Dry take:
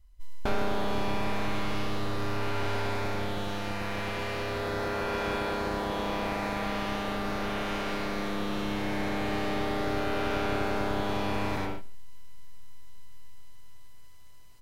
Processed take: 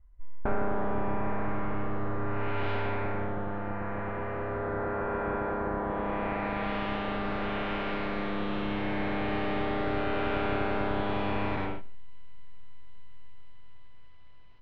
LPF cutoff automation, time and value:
LPF 24 dB/oct
2.25 s 1800 Hz
2.7 s 3400 Hz
3.36 s 1700 Hz
5.81 s 1700 Hz
6.72 s 3300 Hz

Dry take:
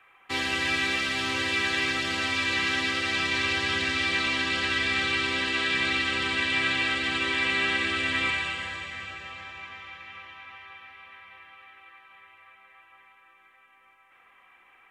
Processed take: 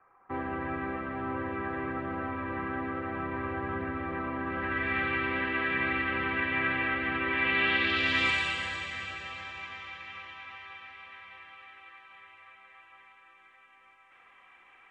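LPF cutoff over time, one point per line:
LPF 24 dB/oct
4.4 s 1300 Hz
4.95 s 2100 Hz
7.26 s 2100 Hz
7.81 s 3700 Hz
8.4 s 8800 Hz

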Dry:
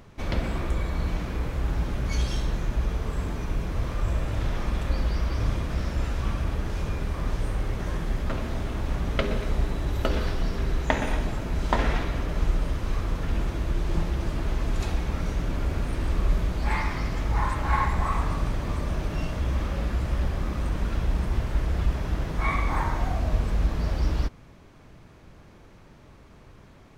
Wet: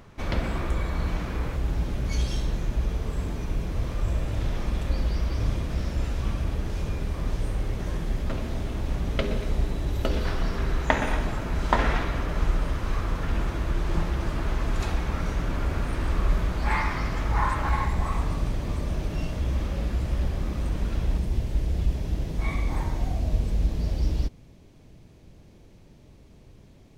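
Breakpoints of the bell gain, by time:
bell 1300 Hz 1.5 oct
+2 dB
from 1.56 s -4.5 dB
from 10.25 s +4 dB
from 17.69 s -5.5 dB
from 21.18 s -13 dB

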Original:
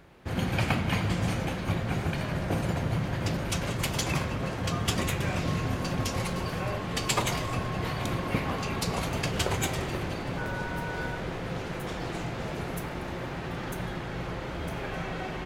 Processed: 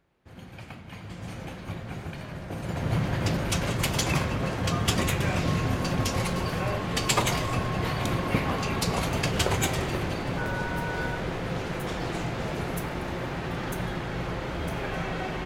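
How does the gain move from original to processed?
0.85 s -16 dB
1.45 s -7 dB
2.54 s -7 dB
2.94 s +3 dB

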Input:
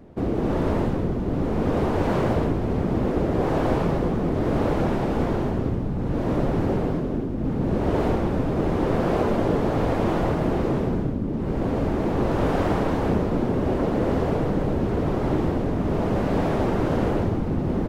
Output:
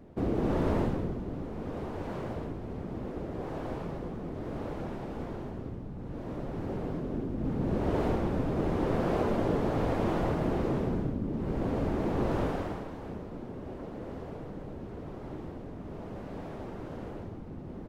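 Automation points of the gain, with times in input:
0.81 s -5 dB
1.5 s -14.5 dB
6.44 s -14.5 dB
7.29 s -6.5 dB
12.37 s -6.5 dB
12.9 s -18 dB

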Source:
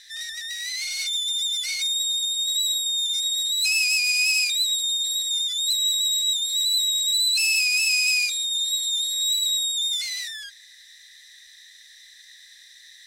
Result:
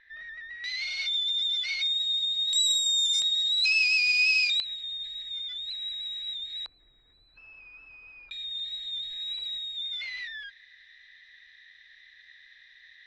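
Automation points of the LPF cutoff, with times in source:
LPF 24 dB/oct
1900 Hz
from 0.64 s 3900 Hz
from 2.53 s 8200 Hz
from 3.22 s 4700 Hz
from 4.6 s 2800 Hz
from 6.66 s 1200 Hz
from 8.31 s 2900 Hz

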